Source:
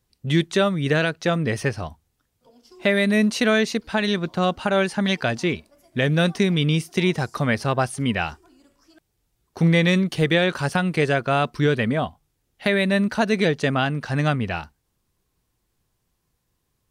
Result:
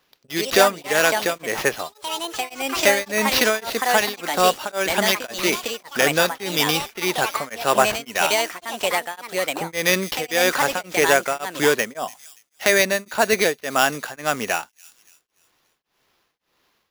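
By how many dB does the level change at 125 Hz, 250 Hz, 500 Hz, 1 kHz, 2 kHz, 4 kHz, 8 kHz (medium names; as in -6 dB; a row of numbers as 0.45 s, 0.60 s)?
-14.0 dB, -7.5 dB, +2.0 dB, +5.5 dB, +4.0 dB, +5.0 dB, +13.5 dB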